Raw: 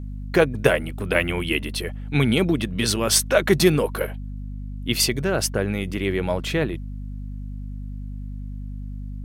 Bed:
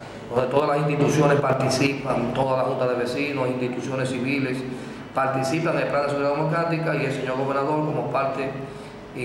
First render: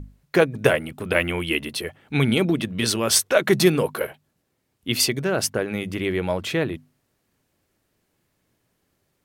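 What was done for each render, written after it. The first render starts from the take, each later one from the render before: hum notches 50/100/150/200/250 Hz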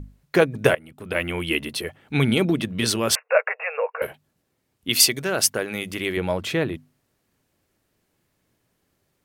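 0.75–1.49 s: fade in, from -19 dB; 3.15–4.02 s: brick-wall FIR band-pass 440–2800 Hz; 4.89–6.17 s: tilt EQ +2 dB/octave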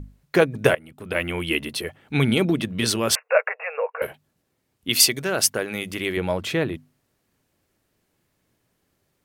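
3.49–3.97 s: distance through air 240 m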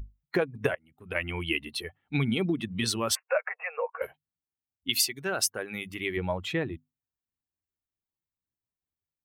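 expander on every frequency bin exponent 1.5; compression 4:1, threshold -24 dBFS, peak gain reduction 10.5 dB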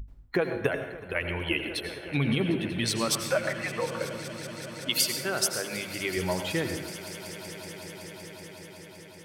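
echo with a slow build-up 188 ms, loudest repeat 5, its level -18 dB; plate-style reverb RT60 0.82 s, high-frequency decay 0.75×, pre-delay 75 ms, DRR 6.5 dB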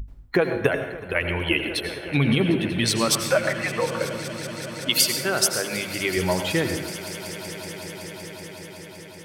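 trim +6 dB

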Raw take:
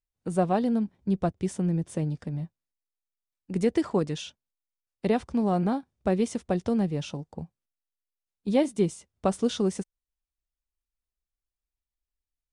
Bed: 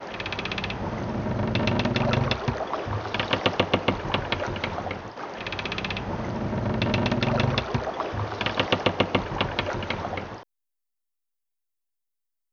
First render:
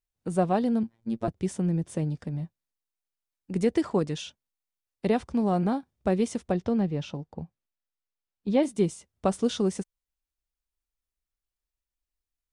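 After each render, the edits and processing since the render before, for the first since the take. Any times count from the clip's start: 0.83–1.28 s: robot voice 114 Hz; 6.52–8.63 s: distance through air 100 m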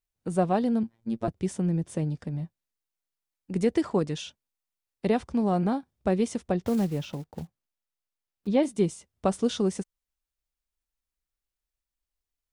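6.66–8.48 s: block-companded coder 5-bit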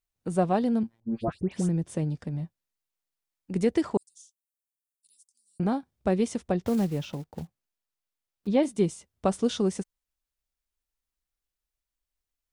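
1.00–1.69 s: phase dispersion highs, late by 114 ms, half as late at 1.8 kHz; 3.97–5.60 s: inverse Chebyshev high-pass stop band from 1.8 kHz, stop band 70 dB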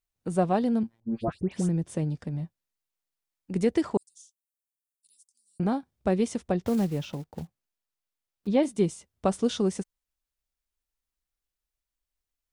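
no audible change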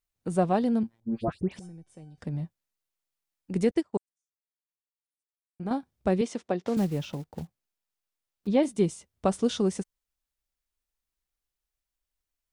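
1.59–2.18 s: feedback comb 760 Hz, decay 0.38 s, mix 90%; 3.71–5.71 s: upward expansion 2.5:1, over -45 dBFS; 6.21–6.77 s: band-pass 250–6700 Hz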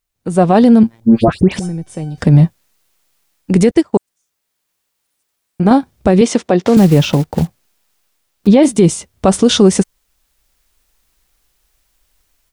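level rider gain up to 16 dB; loudness maximiser +9.5 dB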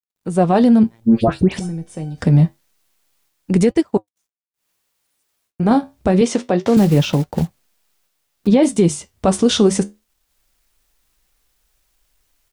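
bit crusher 11-bit; flange 0.26 Hz, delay 3.8 ms, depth 9.8 ms, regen -69%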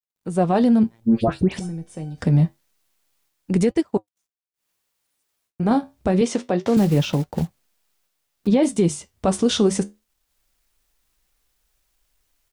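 trim -4.5 dB

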